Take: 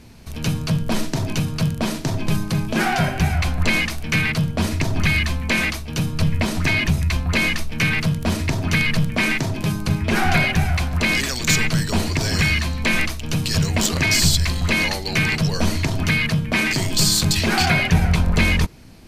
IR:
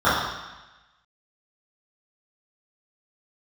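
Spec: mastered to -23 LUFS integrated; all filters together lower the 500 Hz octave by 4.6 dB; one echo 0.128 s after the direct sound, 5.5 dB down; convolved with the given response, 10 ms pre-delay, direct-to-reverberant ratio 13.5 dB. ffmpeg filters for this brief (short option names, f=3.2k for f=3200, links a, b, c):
-filter_complex "[0:a]equalizer=f=500:t=o:g=-6.5,aecho=1:1:128:0.531,asplit=2[a][b];[1:a]atrim=start_sample=2205,adelay=10[c];[b][c]afir=irnorm=-1:irlink=0,volume=-37dB[d];[a][d]amix=inputs=2:normalize=0,volume=-3.5dB"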